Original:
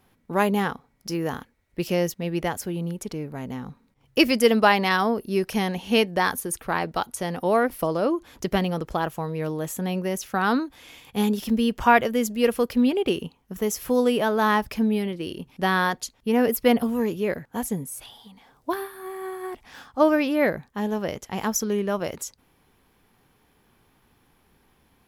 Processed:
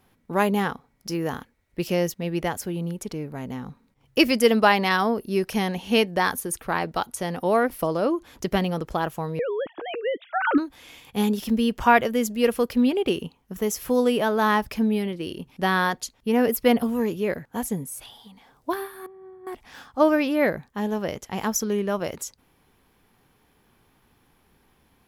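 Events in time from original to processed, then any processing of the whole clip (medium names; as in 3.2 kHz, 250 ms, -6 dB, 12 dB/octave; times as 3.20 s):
9.39–10.58 s: formants replaced by sine waves
19.06–19.47 s: band-pass filter 110 Hz, Q 1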